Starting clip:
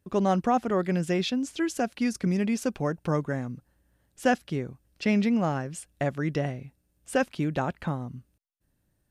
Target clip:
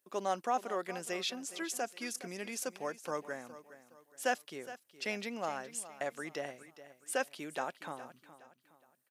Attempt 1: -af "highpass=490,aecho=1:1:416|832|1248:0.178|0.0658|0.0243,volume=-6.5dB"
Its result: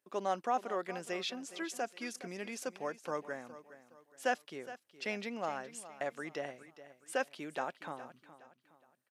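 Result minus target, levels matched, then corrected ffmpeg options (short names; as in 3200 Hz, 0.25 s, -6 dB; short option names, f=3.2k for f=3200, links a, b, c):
8000 Hz band -5.5 dB
-af "highpass=490,highshelf=f=7.1k:g=12,aecho=1:1:416|832|1248:0.178|0.0658|0.0243,volume=-6.5dB"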